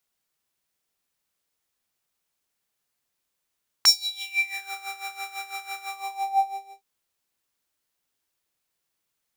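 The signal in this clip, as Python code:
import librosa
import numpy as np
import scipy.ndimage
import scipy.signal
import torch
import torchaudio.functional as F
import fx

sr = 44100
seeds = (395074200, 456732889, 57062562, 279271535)

y = fx.sub_patch_tremolo(sr, seeds[0], note=79, wave='square', wave2='sine', interval_st=-12, detune_cents=16, level2_db=-5, sub_db=-20, noise_db=-14, kind='highpass', cutoff_hz=510.0, q=9.4, env_oct=3.5, env_decay_s=0.88, env_sustain_pct=40, attack_ms=3.9, decay_s=0.15, sustain_db=-16, release_s=1.0, note_s=1.97, lfo_hz=6.0, tremolo_db=14.0)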